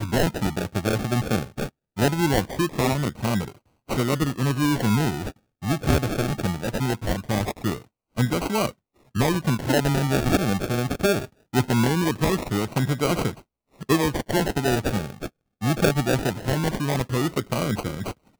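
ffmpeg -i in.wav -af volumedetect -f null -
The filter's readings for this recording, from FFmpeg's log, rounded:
mean_volume: -24.1 dB
max_volume: -7.3 dB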